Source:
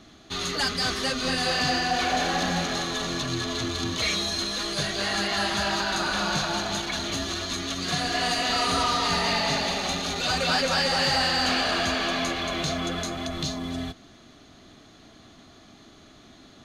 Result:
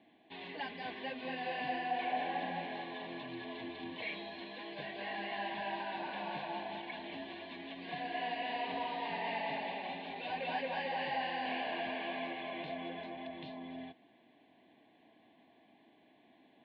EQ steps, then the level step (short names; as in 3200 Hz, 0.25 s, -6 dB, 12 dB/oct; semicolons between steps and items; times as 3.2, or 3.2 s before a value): Butterworth band-stop 1300 Hz, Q 2.1; air absorption 370 m; speaker cabinet 370–3100 Hz, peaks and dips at 400 Hz -7 dB, 580 Hz -5 dB, 1300 Hz -5 dB, 1800 Hz -3 dB; -5.0 dB